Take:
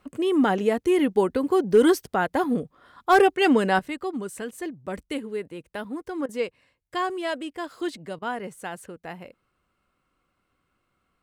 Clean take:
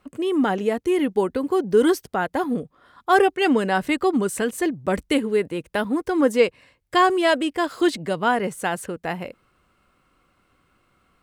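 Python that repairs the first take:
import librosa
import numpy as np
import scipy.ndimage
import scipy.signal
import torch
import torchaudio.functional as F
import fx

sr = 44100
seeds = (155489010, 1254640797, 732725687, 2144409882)

y = fx.fix_declip(x, sr, threshold_db=-9.0)
y = fx.fix_interpolate(y, sr, at_s=(6.26, 8.19), length_ms=28.0)
y = fx.fix_level(y, sr, at_s=3.79, step_db=10.0)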